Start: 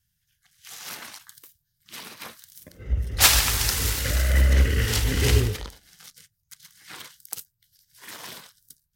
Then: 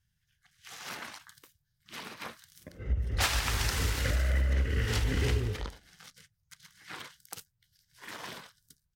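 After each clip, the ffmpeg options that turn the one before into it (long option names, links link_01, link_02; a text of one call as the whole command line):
ffmpeg -i in.wav -af "firequalizer=gain_entry='entry(1500,0);entry(3900,-5);entry(13000,-13)':delay=0.05:min_phase=1,acompressor=threshold=-25dB:ratio=6" out.wav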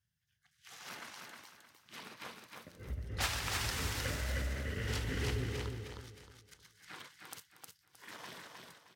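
ffmpeg -i in.wav -filter_complex "[0:a]highpass=77,asplit=2[link_01][link_02];[link_02]aecho=0:1:311|622|933|1244:0.631|0.196|0.0606|0.0188[link_03];[link_01][link_03]amix=inputs=2:normalize=0,volume=-6.5dB" out.wav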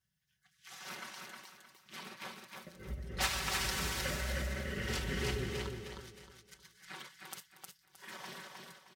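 ffmpeg -i in.wav -af "aecho=1:1:5.3:0.76" out.wav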